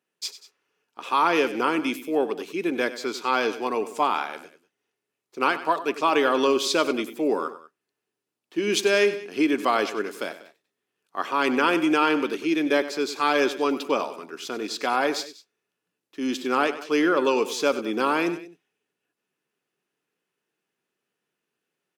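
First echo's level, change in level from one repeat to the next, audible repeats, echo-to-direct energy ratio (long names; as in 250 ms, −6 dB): −14.0 dB, −5.0 dB, 2, −13.0 dB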